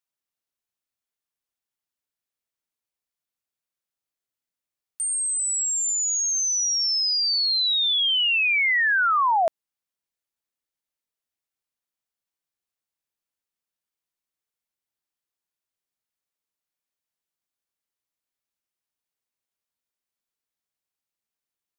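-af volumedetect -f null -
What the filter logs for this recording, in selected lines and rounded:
mean_volume: -29.2 dB
max_volume: -16.7 dB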